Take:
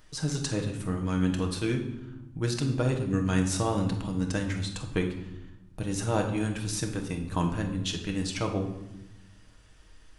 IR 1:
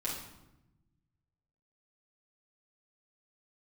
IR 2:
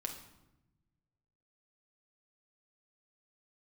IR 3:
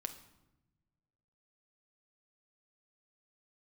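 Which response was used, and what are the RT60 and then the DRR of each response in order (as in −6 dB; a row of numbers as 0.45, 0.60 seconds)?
2; 0.95, 0.95, 1.0 seconds; −7.0, 2.5, 7.0 decibels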